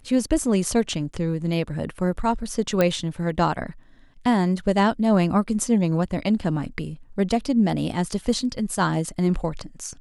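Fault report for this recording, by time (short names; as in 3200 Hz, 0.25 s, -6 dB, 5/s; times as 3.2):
2.81 pop -7 dBFS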